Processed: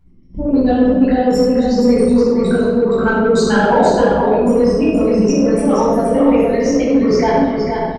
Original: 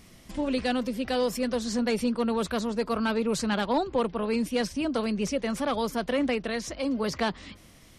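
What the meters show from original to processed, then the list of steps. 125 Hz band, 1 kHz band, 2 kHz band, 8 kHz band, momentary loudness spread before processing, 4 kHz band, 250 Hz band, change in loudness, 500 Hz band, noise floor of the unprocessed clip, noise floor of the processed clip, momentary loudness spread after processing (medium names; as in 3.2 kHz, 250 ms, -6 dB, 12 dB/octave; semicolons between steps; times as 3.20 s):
+16.5 dB, +13.5 dB, +11.0 dB, +8.0 dB, 4 LU, +4.5 dB, +15.0 dB, +14.5 dB, +16.0 dB, -53 dBFS, -26 dBFS, 2 LU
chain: resonances exaggerated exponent 3; peaking EQ 65 Hz +9.5 dB 0.26 oct; on a send: delay 474 ms -5.5 dB; on the sum: simulated room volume 900 m³, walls mixed, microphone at 7.9 m; gate -28 dBFS, range -11 dB; in parallel at -7 dB: saturation -12 dBFS, distortion -11 dB; on the sum: peaking EQ 950 Hz +2 dB; trim -3.5 dB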